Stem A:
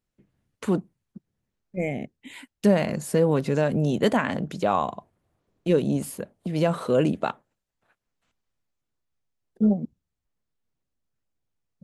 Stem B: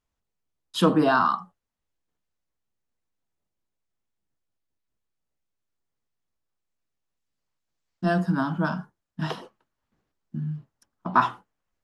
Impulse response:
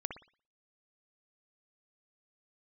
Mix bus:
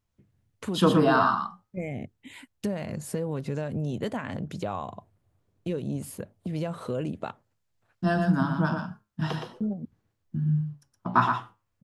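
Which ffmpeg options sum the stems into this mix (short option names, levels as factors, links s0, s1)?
-filter_complex "[0:a]acompressor=threshold=0.0398:ratio=2.5,volume=0.668[s0];[1:a]flanger=delay=5.6:depth=4:regen=81:speed=0.39:shape=triangular,volume=1.33,asplit=2[s1][s2];[s2]volume=0.531,aecho=0:1:118:1[s3];[s0][s1][s3]amix=inputs=3:normalize=0,equalizer=f=100:t=o:w=0.77:g=12.5"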